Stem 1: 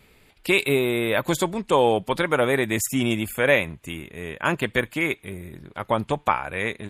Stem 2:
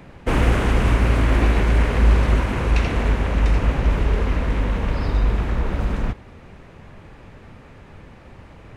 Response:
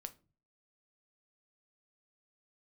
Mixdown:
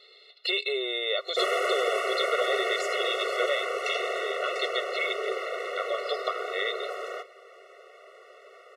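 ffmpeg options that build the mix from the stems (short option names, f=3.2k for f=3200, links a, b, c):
-filter_complex "[0:a]acompressor=threshold=-26dB:ratio=6,lowpass=f=4k:t=q:w=12,volume=1dB[a];[1:a]highpass=410,adelay=1100,volume=-1.5dB,asplit=2[b][c];[c]volume=-4.5dB[d];[2:a]atrim=start_sample=2205[e];[d][e]afir=irnorm=-1:irlink=0[f];[a][b][f]amix=inputs=3:normalize=0,afftfilt=real='re*eq(mod(floor(b*sr/1024/370),2),1)':imag='im*eq(mod(floor(b*sr/1024/370),2),1)':win_size=1024:overlap=0.75"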